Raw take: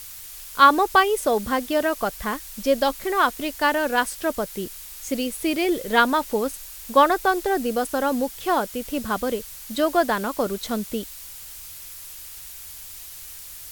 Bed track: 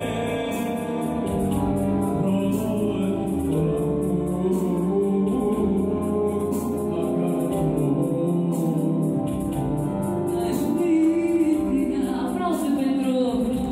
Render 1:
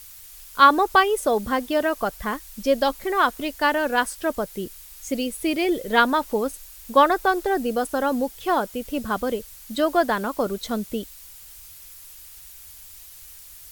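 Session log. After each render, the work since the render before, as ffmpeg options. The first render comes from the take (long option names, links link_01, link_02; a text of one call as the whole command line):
ffmpeg -i in.wav -af "afftdn=noise_reduction=6:noise_floor=-40" out.wav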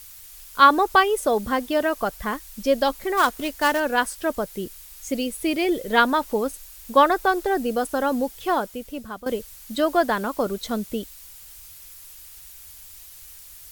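ffmpeg -i in.wav -filter_complex "[0:a]asettb=1/sr,asplit=3[link_01][link_02][link_03];[link_01]atrim=end=3.174[link_04];[link_02]atrim=start=3.17:end=3.8,asetpts=PTS-STARTPTS,afade=type=in:duration=0.004:curve=qsin,afade=type=out:start_time=0.626:duration=0.004:curve=qsin,acrusher=bits=3:mode=log:mix=0:aa=0.000001[link_05];[link_03]atrim=start=3.796[link_06];[link_04][link_05]acrossfade=duration=0.004:curve1=hsin:curve2=qsin[link_07];[link_07][link_06]acrossfade=duration=0.004:curve1=qsin:curve2=hsin,asplit=2[link_08][link_09];[link_08]atrim=end=9.26,asetpts=PTS-STARTPTS,afade=type=out:start_time=8.45:duration=0.81:silence=0.199526[link_10];[link_09]atrim=start=9.26,asetpts=PTS-STARTPTS,afade=type=in:duration=0.004:curve=hsin:silence=0.199526[link_11];[link_10][link_11]concat=n=2:v=0:a=1" out.wav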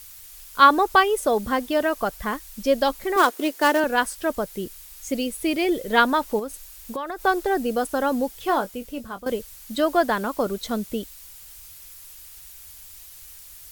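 ffmpeg -i in.wav -filter_complex "[0:a]asettb=1/sr,asplit=3[link_01][link_02][link_03];[link_01]atrim=end=3.164[link_04];[link_02]atrim=start=3.16:end=3.84,asetpts=PTS-STARTPTS,afade=type=in:duration=0.004:curve=qsin,afade=type=out:start_time=0.676:duration=0.004:curve=qsin,highpass=frequency=350:width_type=q:width=2.3[link_05];[link_03]atrim=start=3.836[link_06];[link_04][link_05]acrossfade=duration=0.004:curve1=hsin:curve2=qsin[link_07];[link_07][link_06]acrossfade=duration=0.004:curve1=qsin:curve2=hsin,asettb=1/sr,asplit=3[link_08][link_09][link_10];[link_08]atrim=end=6.394[link_11];[link_09]atrim=start=6.39:end=7.24,asetpts=PTS-STARTPTS,afade=type=in:duration=0.004:curve=qsin,afade=type=out:start_time=0.846:duration=0.004:curve=qsin,acompressor=threshold=-27dB:ratio=6:attack=3.2:release=140:knee=1:detection=peak[link_12];[link_10]atrim=start=7.236[link_13];[link_11][link_12]acrossfade=duration=0.004:curve1=hsin:curve2=qsin[link_14];[link_14][link_13]acrossfade=duration=0.004:curve1=qsin:curve2=hsin,asettb=1/sr,asplit=3[link_15][link_16][link_17];[link_15]atrim=end=8.464[link_18];[link_16]atrim=start=8.46:end=9.3,asetpts=PTS-STARTPTS,afade=type=in:duration=0.004:curve=qsin,afade=type=out:start_time=0.836:duration=0.004:curve=qsin,asplit=2[link_19][link_20];[link_20]adelay=21,volume=-10.5dB[link_21];[link_19][link_21]amix=inputs=2:normalize=0,atrim=end_sample=37044[link_22];[link_17]atrim=start=9.296[link_23];[link_18][link_22]acrossfade=duration=0.004:curve1=hsin:curve2=qsin[link_24];[link_24][link_23]acrossfade=duration=0.004:curve1=qsin:curve2=hsin" out.wav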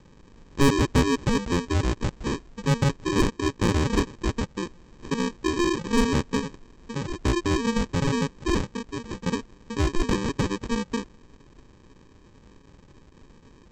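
ffmpeg -i in.wav -af "aresample=16000,acrusher=samples=23:mix=1:aa=0.000001,aresample=44100,asoftclip=type=tanh:threshold=-13.5dB" out.wav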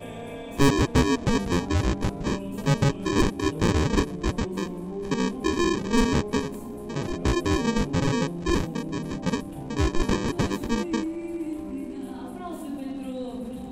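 ffmpeg -i in.wav -i bed.wav -filter_complex "[1:a]volume=-11.5dB[link_01];[0:a][link_01]amix=inputs=2:normalize=0" out.wav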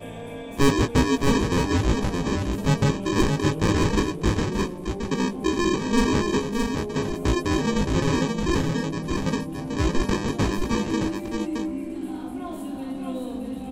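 ffmpeg -i in.wav -filter_complex "[0:a]asplit=2[link_01][link_02];[link_02]adelay=19,volume=-8.5dB[link_03];[link_01][link_03]amix=inputs=2:normalize=0,aecho=1:1:619:0.596" out.wav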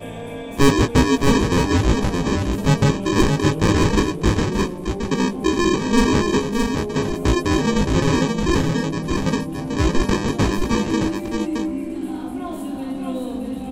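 ffmpeg -i in.wav -af "volume=4.5dB" out.wav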